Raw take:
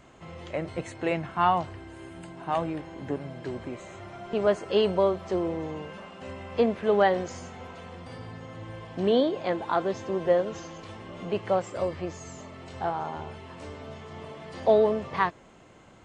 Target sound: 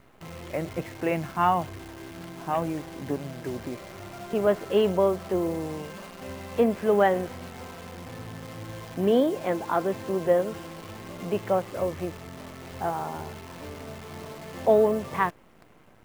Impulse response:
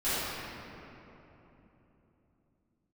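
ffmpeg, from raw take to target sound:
-af "lowpass=f=3k:w=0.5412,lowpass=f=3k:w=1.3066,equalizer=f=210:t=o:w=1.9:g=2.5,acrusher=bits=8:dc=4:mix=0:aa=0.000001"

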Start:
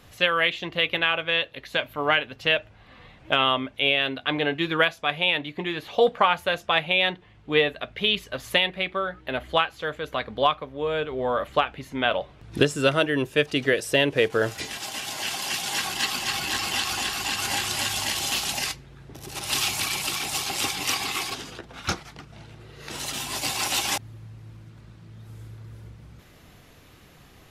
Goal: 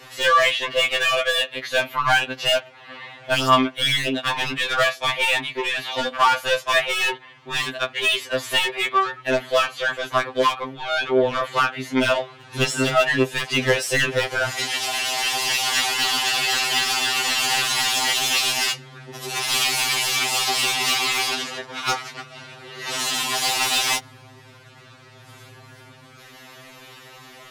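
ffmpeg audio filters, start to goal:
-filter_complex "[0:a]asplit=2[a][b];[b]highpass=f=720:p=1,volume=24dB,asoftclip=type=tanh:threshold=-5.5dB[c];[a][c]amix=inputs=2:normalize=0,lowpass=f=5.7k:p=1,volume=-6dB,afftfilt=real='re*2.45*eq(mod(b,6),0)':imag='im*2.45*eq(mod(b,6),0)':win_size=2048:overlap=0.75,volume=-3dB"

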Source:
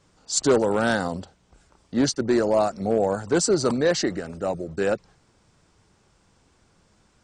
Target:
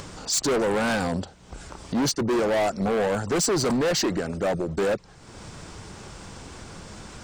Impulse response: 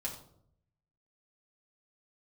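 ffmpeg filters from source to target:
-filter_complex "[0:a]asplit=2[a][b];[b]alimiter=limit=-15.5dB:level=0:latency=1:release=321,volume=-0.5dB[c];[a][c]amix=inputs=2:normalize=0,asoftclip=type=hard:threshold=-20.5dB,acompressor=mode=upward:threshold=-27dB:ratio=2.5"

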